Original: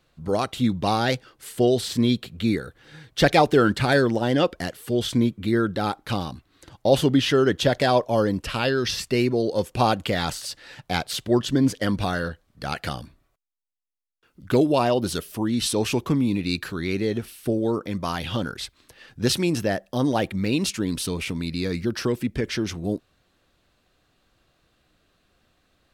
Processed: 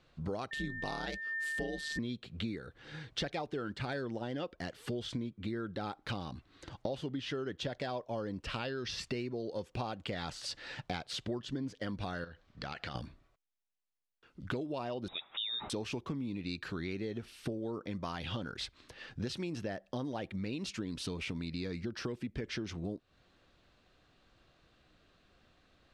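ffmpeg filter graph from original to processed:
-filter_complex "[0:a]asettb=1/sr,asplit=3[s0][s1][s2];[s0]atrim=end=0.514[s3];[s1]atrim=start=0.51:end=1.99,asetpts=PTS-STARTPTS,afade=t=in:d=0.004:c=qsin,afade=t=out:st=1.476:d=0.004:c=qsin,aemphasis=mode=production:type=cd,aeval=exprs='val(0)*sin(2*PI*74*n/s)':c=same,aeval=exprs='val(0)+0.0398*sin(2*PI*1800*n/s)':c=same[s4];[s2]atrim=start=1.986[s5];[s3][s4]acrossfade=d=0.004:c1=hsin:c2=qsin[s6];[s6][s5]acrossfade=d=0.004:c1=qsin:c2=hsin,asettb=1/sr,asplit=3[s7][s8][s9];[s7]atrim=end=12.244[s10];[s8]atrim=start=12.24:end=12.95,asetpts=PTS-STARTPTS,afade=t=in:d=0.004:c=qsin,afade=t=out:st=0.706:d=0.004:c=qsin,lowpass=6900,equalizer=f=2700:w=0.33:g=4,acompressor=threshold=0.0158:ratio=6:attack=3.2:release=140:knee=1:detection=peak[s11];[s9]atrim=start=12.946[s12];[s10][s11]acrossfade=d=0.004:c1=hsin:c2=qsin[s13];[s13][s12]acrossfade=d=0.004:c1=qsin:c2=hsin,asettb=1/sr,asplit=3[s14][s15][s16];[s14]atrim=end=15.084[s17];[s15]atrim=start=15.08:end=15.7,asetpts=PTS-STARTPTS,afade=t=in:d=0.004:c=qsin,afade=t=out:st=0.616:d=0.004:c=qsin,highpass=f=160:p=1,lowpass=f=3300:t=q:w=0.5098,lowpass=f=3300:t=q:w=0.6013,lowpass=f=3300:t=q:w=0.9,lowpass=f=3300:t=q:w=2.563,afreqshift=-3900[s18];[s16]atrim=start=15.696[s19];[s17][s18]acrossfade=d=0.004:c1=hsin:c2=qsin[s20];[s20][s19]acrossfade=d=0.004:c1=qsin:c2=hsin,lowpass=5600,acompressor=threshold=0.02:ratio=10,volume=0.891"

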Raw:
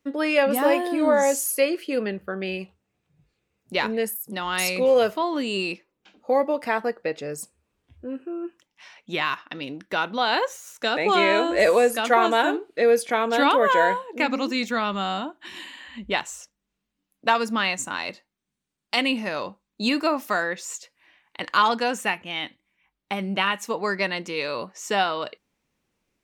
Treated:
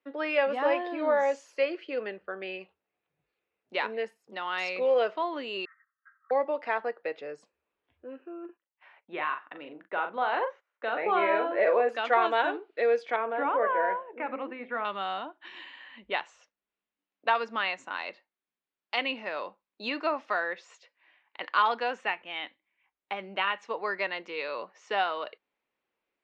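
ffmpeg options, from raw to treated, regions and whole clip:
-filter_complex "[0:a]asettb=1/sr,asplit=3[s0][s1][s2];[s0]atrim=end=5.654[s3];[s1]atrim=start=5.65:end=6.31,asetpts=PTS-STARTPTS,afade=t=in:d=0.004:c=qsin,afade=t=out:st=0.656:d=0.004:c=qsin,aecho=1:1:3.8:0.99,atrim=end_sample=29106,acontrast=57,asuperpass=centerf=1500:order=20:qfactor=1.8[s4];[s2]atrim=start=6.306[s5];[s3][s4]acrossfade=d=0.004:c1=hsin:c2=qsin[s6];[s6][s5]acrossfade=d=0.004:c1=qsin:c2=hsin,asettb=1/sr,asplit=3[s7][s8][s9];[s7]atrim=end=8.454[s10];[s8]atrim=start=8.45:end=11.89,asetpts=PTS-STARTPTS,afade=t=in:d=0.004:c=qsin,afade=t=out:st=3.436:d=0.004:c=qsin,lowpass=1900,asplit=2[s11][s12];[s12]adelay=40,volume=0.447[s13];[s11][s13]amix=inputs=2:normalize=0,atrim=end_sample=151704,agate=range=0.126:threshold=0.00178:ratio=16:release=100:detection=peak[s14];[s9]atrim=start=11.886[s15];[s10][s14]acrossfade=d=0.004:c1=hsin:c2=qsin[s16];[s16][s15]acrossfade=d=0.004:c1=qsin:c2=hsin,asettb=1/sr,asplit=3[s17][s18][s19];[s17]atrim=end=13.164[s20];[s18]atrim=start=13.16:end=14.85,asetpts=PTS-STARTPTS,afade=t=in:d=0.004:c=qsin,afade=t=out:st=1.686:d=0.004:c=qsin,deesser=1,lowpass=f=2400:w=0.5412,lowpass=f=2400:w=1.3066,bandreject=f=51.33:t=h:w=4,bandreject=f=102.66:t=h:w=4,bandreject=f=153.99:t=h:w=4,bandreject=f=205.32:t=h:w=4,bandreject=f=256.65:t=h:w=4,bandreject=f=307.98:t=h:w=4,bandreject=f=359.31:t=h:w=4,bandreject=f=410.64:t=h:w=4,bandreject=f=461.97:t=h:w=4,bandreject=f=513.3:t=h:w=4,bandreject=f=564.63:t=h:w=4,bandreject=f=615.96:t=h:w=4,bandreject=f=667.29:t=h:w=4,bandreject=f=718.62:t=h:w=4,bandreject=f=769.95:t=h:w=4[s21];[s19]atrim=start=14.846[s22];[s20][s21]acrossfade=d=0.004:c1=hsin:c2=qsin[s23];[s23][s22]acrossfade=d=0.004:c1=qsin:c2=hsin,lowpass=f=6700:w=0.5412,lowpass=f=6700:w=1.3066,acrossover=split=350 3700:gain=0.1 1 0.0794[s24][s25][s26];[s24][s25][s26]amix=inputs=3:normalize=0,volume=0.596"

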